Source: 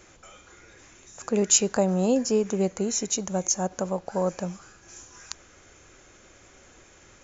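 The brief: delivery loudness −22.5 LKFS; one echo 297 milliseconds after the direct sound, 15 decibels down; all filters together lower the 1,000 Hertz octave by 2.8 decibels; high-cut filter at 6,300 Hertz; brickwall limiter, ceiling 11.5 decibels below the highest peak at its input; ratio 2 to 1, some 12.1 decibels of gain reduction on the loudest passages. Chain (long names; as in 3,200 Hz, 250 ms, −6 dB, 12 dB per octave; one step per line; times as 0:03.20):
low-pass filter 6,300 Hz
parametric band 1,000 Hz −4 dB
downward compressor 2 to 1, threshold −41 dBFS
brickwall limiter −30 dBFS
single-tap delay 297 ms −15 dB
level +18.5 dB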